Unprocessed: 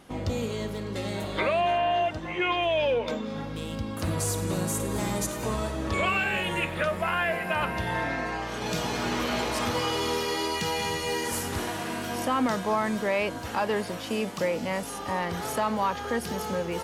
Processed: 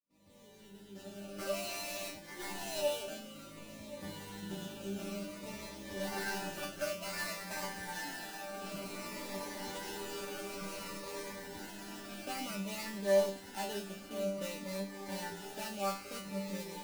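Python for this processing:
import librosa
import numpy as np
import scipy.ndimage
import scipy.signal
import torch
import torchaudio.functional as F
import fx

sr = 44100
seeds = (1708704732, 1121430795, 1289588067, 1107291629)

y = fx.fade_in_head(x, sr, length_s=1.86)
y = scipy.signal.sosfilt(scipy.signal.butter(8, 4700.0, 'lowpass', fs=sr, output='sos'), y)
y = fx.hum_notches(y, sr, base_hz=60, count=2)
y = fx.notch_comb(y, sr, f0_hz=1100.0)
y = fx.sample_hold(y, sr, seeds[0], rate_hz=3400.0, jitter_pct=20)
y = fx.resonator_bank(y, sr, root=55, chord='fifth', decay_s=0.36)
y = y + 10.0 ** (-17.0 / 20.0) * np.pad(y, (int(1076 * sr / 1000.0), 0))[:len(y)]
y = fx.notch_cascade(y, sr, direction='falling', hz=0.55)
y = F.gain(torch.from_numpy(y), 7.0).numpy()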